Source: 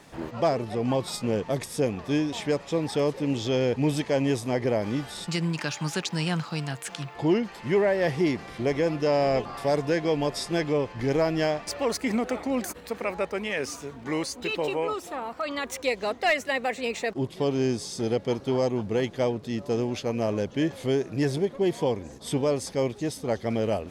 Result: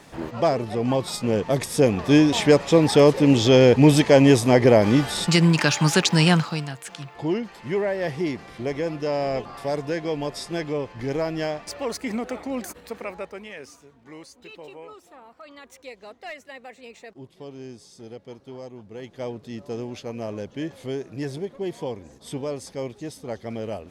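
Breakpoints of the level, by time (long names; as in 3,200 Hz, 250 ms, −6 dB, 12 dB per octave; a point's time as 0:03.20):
0:01.17 +3 dB
0:02.28 +10.5 dB
0:06.31 +10.5 dB
0:06.74 −2 dB
0:12.94 −2 dB
0:13.89 −14 dB
0:18.90 −14 dB
0:19.31 −5 dB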